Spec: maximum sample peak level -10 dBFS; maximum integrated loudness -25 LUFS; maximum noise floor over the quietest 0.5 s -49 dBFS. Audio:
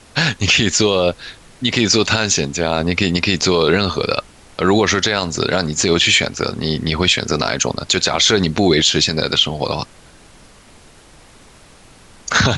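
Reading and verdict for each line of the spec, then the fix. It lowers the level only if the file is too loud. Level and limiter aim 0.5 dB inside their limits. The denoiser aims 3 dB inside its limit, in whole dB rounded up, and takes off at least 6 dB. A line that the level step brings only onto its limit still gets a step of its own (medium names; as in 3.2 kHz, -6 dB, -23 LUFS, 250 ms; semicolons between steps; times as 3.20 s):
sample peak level -3.0 dBFS: fail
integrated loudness -16.0 LUFS: fail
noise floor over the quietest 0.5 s -45 dBFS: fail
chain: trim -9.5 dB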